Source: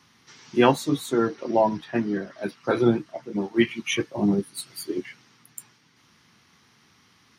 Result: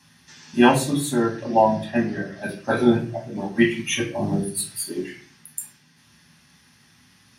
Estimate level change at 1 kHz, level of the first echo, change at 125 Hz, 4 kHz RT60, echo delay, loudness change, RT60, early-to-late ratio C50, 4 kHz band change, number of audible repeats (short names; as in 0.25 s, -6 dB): +4.5 dB, none, +3.5 dB, 0.35 s, none, +2.5 dB, 0.40 s, 9.5 dB, +2.5 dB, none